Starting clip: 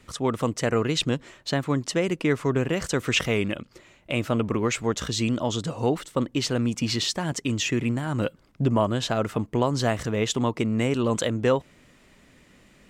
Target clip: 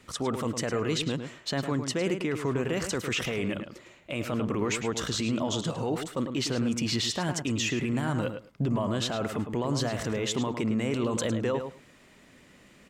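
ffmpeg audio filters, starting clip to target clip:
-filter_complex "[0:a]lowshelf=f=74:g=-10,alimiter=limit=-20.5dB:level=0:latency=1:release=12,asplit=2[a][b];[b]adelay=106,lowpass=f=3.5k:p=1,volume=-7.5dB,asplit=2[c][d];[d]adelay=106,lowpass=f=3.5k:p=1,volume=0.15[e];[a][c][e]amix=inputs=3:normalize=0"

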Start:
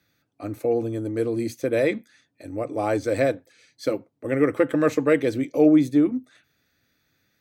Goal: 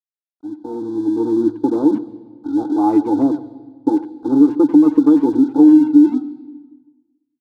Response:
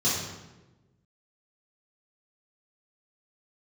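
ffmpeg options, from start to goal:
-filter_complex "[0:a]afwtdn=0.0447,asplit=3[a][b][c];[a]bandpass=f=300:t=q:w=8,volume=0dB[d];[b]bandpass=f=870:t=q:w=8,volume=-6dB[e];[c]bandpass=f=2.24k:t=q:w=8,volume=-9dB[f];[d][e][f]amix=inputs=3:normalize=0,acompressor=threshold=-27dB:ratio=5,aeval=exprs='sgn(val(0))*max(abs(val(0))-0.00133,0)':c=same,asuperstop=centerf=2300:order=20:qfactor=1.3,asplit=2[g][h];[h]adelay=90,highpass=300,lowpass=3.4k,asoftclip=type=hard:threshold=-32.5dB,volume=-13dB[i];[g][i]amix=inputs=2:normalize=0,asplit=2[j][k];[1:a]atrim=start_sample=2205,asetrate=29106,aresample=44100,adelay=123[l];[k][l]afir=irnorm=-1:irlink=0,volume=-34.5dB[m];[j][m]amix=inputs=2:normalize=0,dynaudnorm=f=220:g=9:m=14.5dB,volume=5.5dB"

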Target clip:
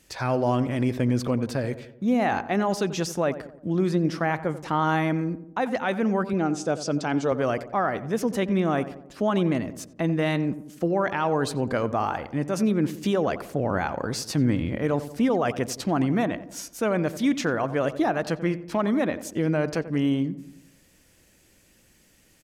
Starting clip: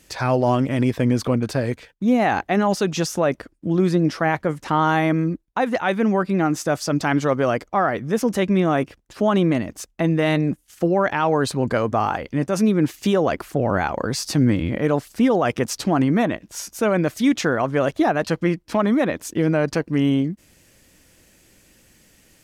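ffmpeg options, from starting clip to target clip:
-filter_complex "[0:a]asettb=1/sr,asplit=3[a][b][c];[a]atrim=end=6.334[d];[b]atrim=start=6.33:end=7.32,asetpts=PTS-STARTPTS,afade=t=in:d=0.004:c=qsin,afade=t=out:st=0.986:d=0.004:c=qsin,highpass=110,equalizer=f=450:t=q:w=4:g=4,equalizer=f=1.1k:t=q:w=4:g=-5,equalizer=f=1.9k:t=q:w=4:g=-8,lowpass=f=8.8k:w=0.5412,lowpass=f=8.8k:w=1.3066[e];[c]atrim=start=7.316[f];[d][e]acrossfade=d=0.004:c1=hsin:c2=qsin[g];[g][f]acrossfade=d=0.004:c1=qsin:c2=hsin,asplit=2[h][i];[i]adelay=89,lowpass=f=1.3k:p=1,volume=-12.5dB,asplit=2[j][k];[k]adelay=89,lowpass=f=1.3k:p=1,volume=0.55,asplit=2[l][m];[m]adelay=89,lowpass=f=1.3k:p=1,volume=0.55,asplit=2[n][o];[o]adelay=89,lowpass=f=1.3k:p=1,volume=0.55,asplit=2[p][q];[q]adelay=89,lowpass=f=1.3k:p=1,volume=0.55,asplit=2[r][s];[s]adelay=89,lowpass=f=1.3k:p=1,volume=0.55[t];[j][l][n][p][r][t]amix=inputs=6:normalize=0[u];[h][u]amix=inputs=2:normalize=0,volume=-5dB"

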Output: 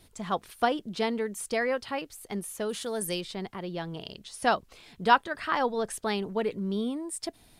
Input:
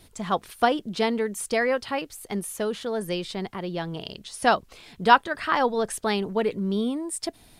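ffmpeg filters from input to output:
-filter_complex "[0:a]asettb=1/sr,asplit=3[a][b][c];[a]atrim=end=2.694[d];[b]atrim=start=2.69:end=3.21,asetpts=PTS-STARTPTS,afade=t=in:d=0.004:c=qsin,afade=t=out:st=0.516:d=0.004:c=qsin,equalizer=f=10k:w=0.54:g=14.5[e];[c]atrim=start=3.206[f];[d][e]acrossfade=d=0.004:c1=hsin:c2=qsin[g];[g][f]acrossfade=d=0.004:c1=qsin:c2=hsin,volume=-4.5dB"

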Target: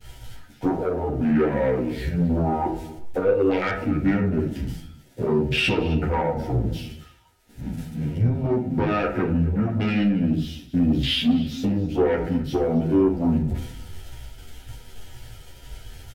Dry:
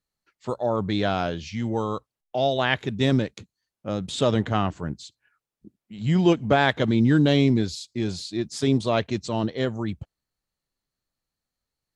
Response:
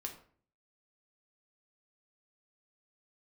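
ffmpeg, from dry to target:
-filter_complex "[0:a]aeval=exprs='val(0)+0.5*0.0282*sgn(val(0))':c=same,asplit=2[a][b];[b]acontrast=78,volume=1dB[c];[a][c]amix=inputs=2:normalize=0,afwtdn=0.1,bass=f=250:g=-6,treble=f=4k:g=-4,acompressor=threshold=-20dB:ratio=6,agate=range=-33dB:threshold=-33dB:ratio=3:detection=peak,asetrate=32667,aresample=44100,asuperstop=centerf=1100:order=12:qfactor=4.2,aecho=1:1:263:0.126[d];[1:a]atrim=start_sample=2205[e];[d][e]afir=irnorm=-1:irlink=0,asoftclip=type=tanh:threshold=-19dB,asplit=2[f][g];[g]adelay=10.7,afreqshift=-2[h];[f][h]amix=inputs=2:normalize=1,volume=8dB"

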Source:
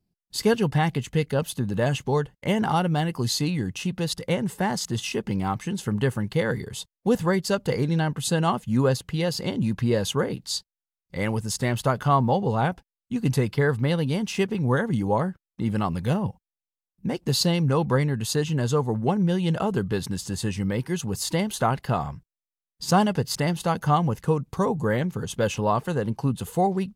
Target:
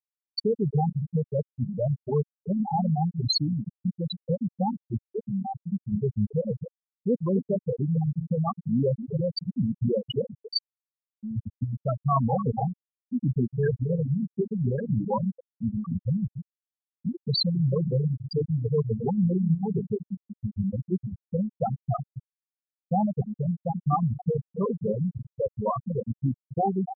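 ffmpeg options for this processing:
-filter_complex "[0:a]highshelf=f=3.2k:g=7,volume=18dB,asoftclip=hard,volume=-18dB,asplit=2[a][b];[b]aecho=0:1:268:0.447[c];[a][c]amix=inputs=2:normalize=0,afftfilt=real='re*gte(hypot(re,im),0.398)':imag='im*gte(hypot(re,im),0.398)':win_size=1024:overlap=0.75,crystalizer=i=3:c=0"

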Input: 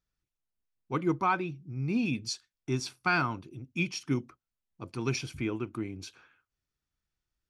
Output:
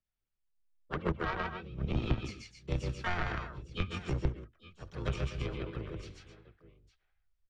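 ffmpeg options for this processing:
-filter_complex "[0:a]aecho=1:1:62|126|141|259|857:0.119|0.316|0.668|0.282|0.141,asplit=4[a][b][c][d];[b]asetrate=22050,aresample=44100,atempo=2,volume=-5dB[e];[c]asetrate=55563,aresample=44100,atempo=0.793701,volume=-2dB[f];[d]asetrate=66075,aresample=44100,atempo=0.66742,volume=-6dB[g];[a][e][f][g]amix=inputs=4:normalize=0,aeval=exprs='0.335*(cos(1*acos(clip(val(0)/0.335,-1,1)))-cos(1*PI/2))+0.0841*(cos(3*acos(clip(val(0)/0.335,-1,1)))-cos(3*PI/2))':c=same,acrossover=split=150[h][i];[i]acompressor=threshold=-33dB:ratio=4[j];[h][j]amix=inputs=2:normalize=0,asubboost=boost=6:cutoff=74,acrossover=split=330|2500[k][l][m];[m]acompressor=threshold=-48dB:ratio=6[n];[k][l][n]amix=inputs=3:normalize=0,lowpass=4.7k,equalizer=f=270:w=5:g=-6,volume=2dB"

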